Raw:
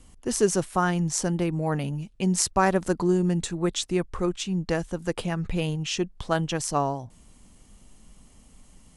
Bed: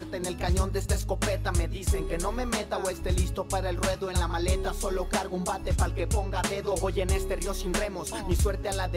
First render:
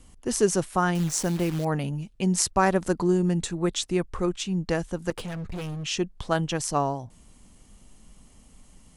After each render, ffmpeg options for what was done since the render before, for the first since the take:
-filter_complex "[0:a]asettb=1/sr,asplit=3[s0][s1][s2];[s0]atrim=end=0.954[s3];[s1]atrim=start=0.95:end=1.65,asetpts=PTS-STARTPTS,afade=t=in:d=0.004:c=qsin,afade=t=out:st=0.696:d=0.004:c=qsin,acrusher=bits=7:dc=4:mix=0:aa=0.000001[s4];[s2]atrim=start=1.646[s5];[s3][s4]acrossfade=d=0.004:c1=hsin:c2=qsin[s6];[s6][s5]acrossfade=d=0.004:c1=qsin:c2=hsin,asettb=1/sr,asplit=3[s7][s8][s9];[s7]atrim=end=5.104[s10];[s8]atrim=start=5.1:end=5.84,asetpts=PTS-STARTPTS,afade=t=in:d=0.004:c=qsin,afade=t=out:st=0.736:d=0.004:c=qsin,asoftclip=type=hard:threshold=0.0282[s11];[s9]atrim=start=5.836[s12];[s10][s11]acrossfade=d=0.004:c1=hsin:c2=qsin[s13];[s13][s12]acrossfade=d=0.004:c1=qsin:c2=hsin"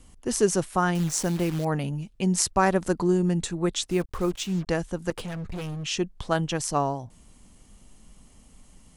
-filter_complex "[0:a]asettb=1/sr,asplit=3[s0][s1][s2];[s0]atrim=end=3.904[s3];[s1]atrim=start=3.9:end=4.67,asetpts=PTS-STARTPTS,afade=t=in:d=0.004:c=qsin,afade=t=out:st=0.766:d=0.004:c=qsin,acrusher=bits=6:mix=0:aa=0.5[s4];[s2]atrim=start=4.666[s5];[s3][s4]acrossfade=d=0.004:c1=hsin:c2=qsin[s6];[s6][s5]acrossfade=d=0.004:c1=qsin:c2=hsin"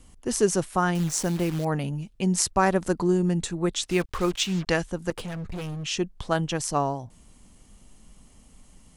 -filter_complex "[0:a]asettb=1/sr,asplit=3[s0][s1][s2];[s0]atrim=end=3.834[s3];[s1]atrim=start=3.83:end=4.84,asetpts=PTS-STARTPTS,afade=t=in:d=0.004:c=qsin,afade=t=out:st=1.006:d=0.004:c=qsin,equalizer=f=3000:w=0.4:g=8[s4];[s2]atrim=start=4.836[s5];[s3][s4]acrossfade=d=0.004:c1=hsin:c2=qsin[s6];[s6][s5]acrossfade=d=0.004:c1=qsin:c2=hsin"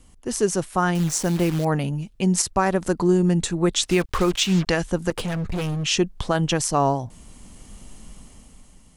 -af "dynaudnorm=f=190:g=11:m=4.47,alimiter=limit=0.376:level=0:latency=1:release=106"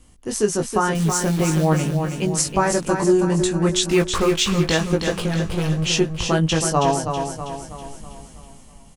-filter_complex "[0:a]asplit=2[s0][s1];[s1]adelay=19,volume=0.631[s2];[s0][s2]amix=inputs=2:normalize=0,asplit=2[s3][s4];[s4]aecho=0:1:323|646|969|1292|1615|1938:0.473|0.232|0.114|0.0557|0.0273|0.0134[s5];[s3][s5]amix=inputs=2:normalize=0"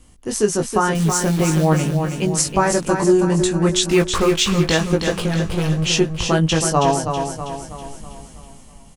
-af "volume=1.26"

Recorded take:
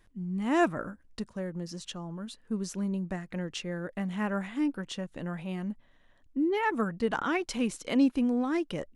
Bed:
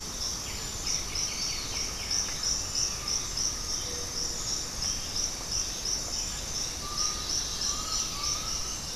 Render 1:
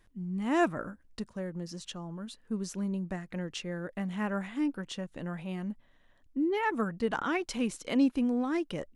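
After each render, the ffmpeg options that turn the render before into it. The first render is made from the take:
-af "volume=0.841"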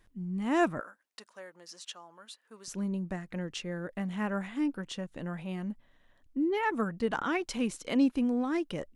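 -filter_complex "[0:a]asettb=1/sr,asplit=3[s0][s1][s2];[s0]atrim=end=0.804[s3];[s1]atrim=start=0.8:end=2.68,asetpts=PTS-STARTPTS,afade=t=in:d=0.004:c=qsin,afade=t=out:st=1.876:d=0.004:c=qsin,highpass=790[s4];[s2]atrim=start=2.676[s5];[s3][s4]acrossfade=d=0.004:c1=hsin:c2=qsin[s6];[s6][s5]acrossfade=d=0.004:c1=qsin:c2=hsin"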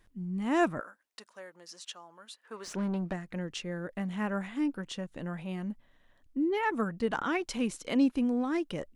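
-filter_complex "[0:a]asplit=3[s0][s1][s2];[s0]afade=t=out:st=2.43:d=0.02[s3];[s1]asplit=2[s4][s5];[s5]highpass=f=720:p=1,volume=11.2,asoftclip=type=tanh:threshold=0.0596[s6];[s4][s6]amix=inputs=2:normalize=0,lowpass=f=1700:p=1,volume=0.501,afade=t=in:st=2.43:d=0.02,afade=t=out:st=3.12:d=0.02[s7];[s2]afade=t=in:st=3.12:d=0.02[s8];[s3][s7][s8]amix=inputs=3:normalize=0"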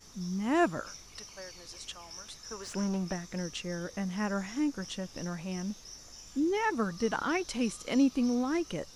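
-filter_complex "[1:a]volume=0.133[s0];[0:a][s0]amix=inputs=2:normalize=0"

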